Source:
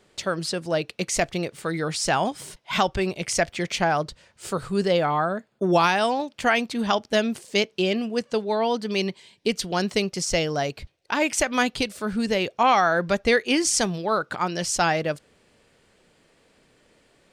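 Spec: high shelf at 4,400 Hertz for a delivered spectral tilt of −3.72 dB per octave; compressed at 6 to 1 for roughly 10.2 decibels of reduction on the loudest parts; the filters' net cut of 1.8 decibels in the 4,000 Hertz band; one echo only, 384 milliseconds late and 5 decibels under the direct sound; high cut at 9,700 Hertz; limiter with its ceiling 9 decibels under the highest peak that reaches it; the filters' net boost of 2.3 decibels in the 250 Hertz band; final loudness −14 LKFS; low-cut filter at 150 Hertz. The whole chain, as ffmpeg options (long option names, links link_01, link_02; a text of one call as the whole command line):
ffmpeg -i in.wav -af "highpass=150,lowpass=9700,equalizer=frequency=250:width_type=o:gain=4,equalizer=frequency=4000:width_type=o:gain=-6,highshelf=frequency=4400:gain=6,acompressor=threshold=-26dB:ratio=6,alimiter=limit=-20.5dB:level=0:latency=1,aecho=1:1:384:0.562,volume=16.5dB" out.wav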